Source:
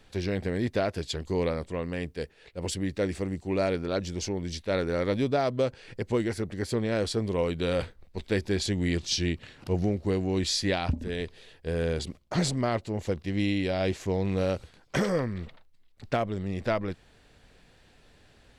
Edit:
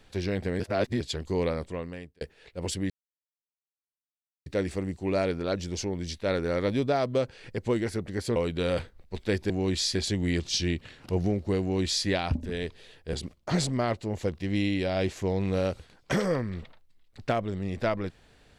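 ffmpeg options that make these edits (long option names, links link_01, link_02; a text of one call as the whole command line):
ffmpeg -i in.wav -filter_complex "[0:a]asplit=9[link_01][link_02][link_03][link_04][link_05][link_06][link_07][link_08][link_09];[link_01]atrim=end=0.602[link_10];[link_02]atrim=start=0.598:end=1.002,asetpts=PTS-STARTPTS,areverse[link_11];[link_03]atrim=start=0.998:end=2.21,asetpts=PTS-STARTPTS,afade=type=out:start_time=0.642:duration=0.57[link_12];[link_04]atrim=start=2.21:end=2.9,asetpts=PTS-STARTPTS,afade=type=in:duration=0.004:curve=hsin,afade=type=out:start_time=0.686:duration=0.004:curve=hsin,apad=pad_dur=1.56[link_13];[link_05]atrim=start=2.9:end=6.802,asetpts=PTS-STARTPTS,afade=type=in:duration=0.004:curve=hsin[link_14];[link_06]atrim=start=7.388:end=8.532[link_15];[link_07]atrim=start=10.188:end=10.642[link_16];[link_08]atrim=start=8.528:end=11.712[link_17];[link_09]atrim=start=11.968[link_18];[link_10][link_11]acrossfade=duration=0.004:curve1=hsin:curve2=hsin[link_19];[link_12][link_13][link_14]concat=n=3:v=0:a=1[link_20];[link_19][link_20]acrossfade=duration=0.004:curve1=hsin:curve2=hsin[link_21];[link_21][link_15]acrossfade=duration=0.004:curve1=hsin:curve2=hsin[link_22];[link_22][link_16]acrossfade=duration=0.004:curve1=hsin:curve2=hsin[link_23];[link_23][link_17]acrossfade=duration=0.004:curve1=hsin:curve2=hsin[link_24];[link_24][link_18]acrossfade=duration=0.004:curve1=hsin:curve2=hsin" out.wav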